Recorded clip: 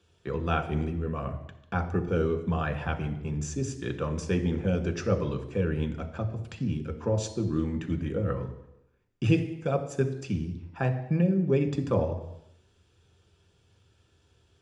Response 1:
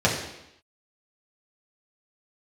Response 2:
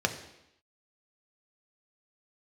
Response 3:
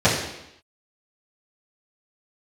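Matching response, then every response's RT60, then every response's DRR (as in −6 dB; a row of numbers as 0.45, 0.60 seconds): 2; 0.85, 0.85, 0.85 seconds; −5.0, 5.0, −13.0 decibels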